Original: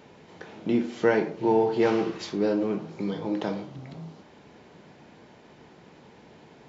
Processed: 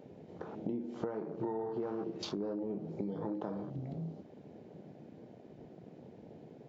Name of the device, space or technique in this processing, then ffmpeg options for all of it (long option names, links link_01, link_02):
serial compression, leveller first: -af "acompressor=threshold=-27dB:ratio=2,acompressor=threshold=-35dB:ratio=8,afwtdn=0.00631,volume=1dB"